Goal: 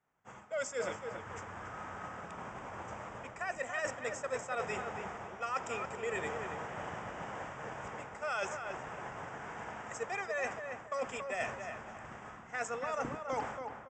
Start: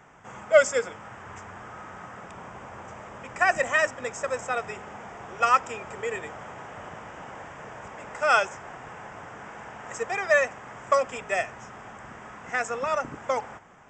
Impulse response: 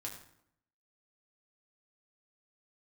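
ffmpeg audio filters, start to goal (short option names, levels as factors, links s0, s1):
-filter_complex "[0:a]alimiter=limit=0.188:level=0:latency=1:release=407,agate=range=0.0224:threshold=0.0158:ratio=3:detection=peak,areverse,acompressor=threshold=0.0158:ratio=8,areverse,asplit=2[s0][s1];[s1]adelay=280,lowpass=f=2400:p=1,volume=0.501,asplit=2[s2][s3];[s3]adelay=280,lowpass=f=2400:p=1,volume=0.32,asplit=2[s4][s5];[s5]adelay=280,lowpass=f=2400:p=1,volume=0.32,asplit=2[s6][s7];[s7]adelay=280,lowpass=f=2400:p=1,volume=0.32[s8];[s0][s2][s4][s6][s8]amix=inputs=5:normalize=0,volume=1.26"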